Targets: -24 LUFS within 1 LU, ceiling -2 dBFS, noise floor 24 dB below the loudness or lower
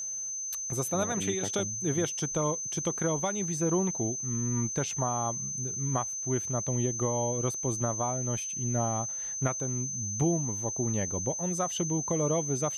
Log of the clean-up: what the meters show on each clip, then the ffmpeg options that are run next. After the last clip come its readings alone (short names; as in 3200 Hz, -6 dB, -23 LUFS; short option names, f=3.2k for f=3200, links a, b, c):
steady tone 6200 Hz; tone level -33 dBFS; loudness -29.5 LUFS; peak -16.0 dBFS; loudness target -24.0 LUFS
-> -af "bandreject=f=6.2k:w=30"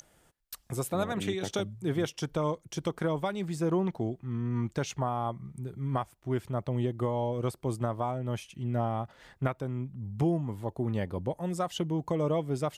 steady tone none; loudness -32.5 LUFS; peak -17.0 dBFS; loudness target -24.0 LUFS
-> -af "volume=8.5dB"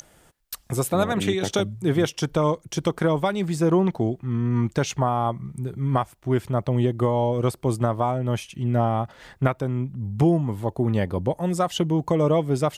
loudness -24.0 LUFS; peak -8.5 dBFS; noise floor -57 dBFS